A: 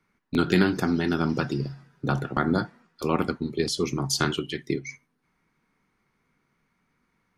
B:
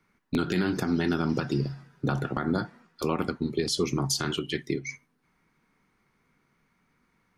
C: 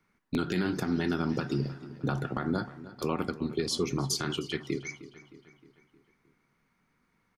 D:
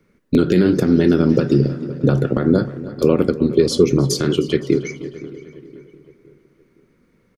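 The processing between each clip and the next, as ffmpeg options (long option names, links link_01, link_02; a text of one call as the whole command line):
ffmpeg -i in.wav -af "alimiter=limit=-17.5dB:level=0:latency=1:release=173,volume=2dB" out.wav
ffmpeg -i in.wav -filter_complex "[0:a]asplit=2[link_01][link_02];[link_02]adelay=310,lowpass=frequency=4900:poles=1,volume=-16dB,asplit=2[link_03][link_04];[link_04]adelay=310,lowpass=frequency=4900:poles=1,volume=0.55,asplit=2[link_05][link_06];[link_06]adelay=310,lowpass=frequency=4900:poles=1,volume=0.55,asplit=2[link_07][link_08];[link_08]adelay=310,lowpass=frequency=4900:poles=1,volume=0.55,asplit=2[link_09][link_10];[link_10]adelay=310,lowpass=frequency=4900:poles=1,volume=0.55[link_11];[link_01][link_03][link_05][link_07][link_09][link_11]amix=inputs=6:normalize=0,volume=-3dB" out.wav
ffmpeg -i in.wav -filter_complex "[0:a]lowshelf=frequency=650:width_type=q:width=3:gain=6.5,asplit=2[link_01][link_02];[link_02]adelay=516,lowpass=frequency=2100:poles=1,volume=-17dB,asplit=2[link_03][link_04];[link_04]adelay=516,lowpass=frequency=2100:poles=1,volume=0.44,asplit=2[link_05][link_06];[link_06]adelay=516,lowpass=frequency=2100:poles=1,volume=0.44,asplit=2[link_07][link_08];[link_08]adelay=516,lowpass=frequency=2100:poles=1,volume=0.44[link_09];[link_01][link_03][link_05][link_07][link_09]amix=inputs=5:normalize=0,volume=7.5dB" out.wav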